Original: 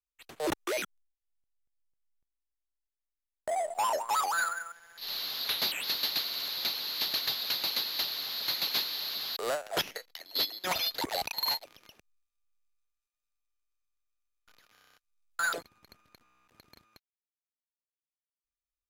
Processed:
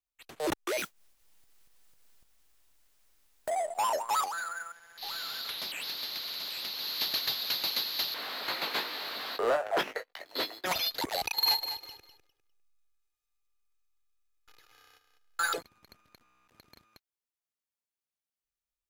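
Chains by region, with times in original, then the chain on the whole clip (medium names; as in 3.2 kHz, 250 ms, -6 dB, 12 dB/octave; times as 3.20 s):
0.78–3.49 s: upward compressor, threshold -47 dBFS + modulation noise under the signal 11 dB
4.24–6.79 s: compression 5:1, threshold -34 dBFS + delay 787 ms -8.5 dB + loudspeaker Doppler distortion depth 0.12 ms
8.14–10.66 s: three-band isolator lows -18 dB, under 210 Hz, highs -17 dB, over 2.4 kHz + waveshaping leveller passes 2 + doubling 19 ms -7.5 dB
11.23–15.57 s: comb 2.4 ms, depth 81% + feedback delay 201 ms, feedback 24%, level -10 dB
whole clip: none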